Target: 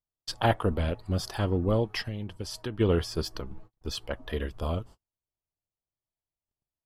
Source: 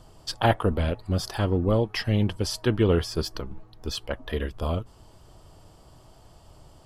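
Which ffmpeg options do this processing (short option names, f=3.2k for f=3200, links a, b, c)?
-filter_complex "[0:a]asplit=3[a][b][c];[a]afade=t=out:st=2.01:d=0.02[d];[b]acompressor=threshold=-30dB:ratio=4,afade=t=in:st=2.01:d=0.02,afade=t=out:st=2.79:d=0.02[e];[c]afade=t=in:st=2.79:d=0.02[f];[d][e][f]amix=inputs=3:normalize=0,agate=range=-44dB:threshold=-42dB:ratio=16:detection=peak,volume=-3dB"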